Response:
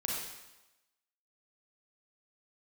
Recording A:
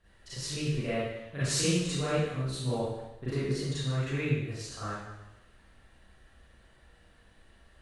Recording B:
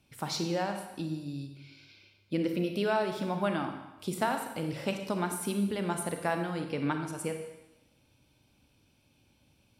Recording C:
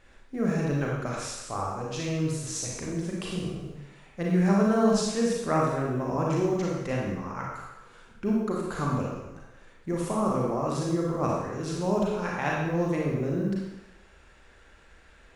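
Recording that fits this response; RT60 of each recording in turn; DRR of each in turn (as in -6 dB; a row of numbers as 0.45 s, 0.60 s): C; 1.0 s, 1.0 s, 1.0 s; -12.5 dB, 5.0 dB, -3.5 dB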